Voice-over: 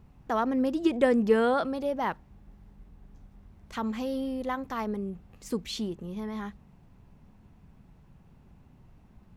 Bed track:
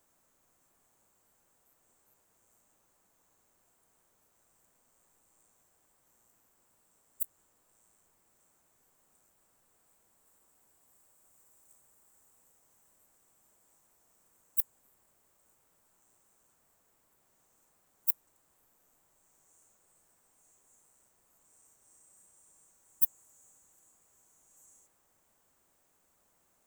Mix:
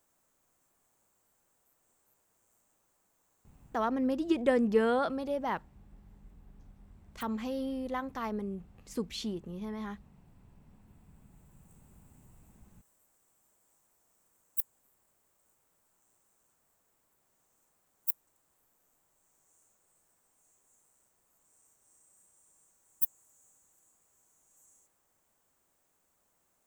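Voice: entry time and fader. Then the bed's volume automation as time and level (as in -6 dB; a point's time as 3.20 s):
3.45 s, -3.5 dB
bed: 3.65 s -2.5 dB
3.90 s -15 dB
10.67 s -15 dB
11.92 s -3 dB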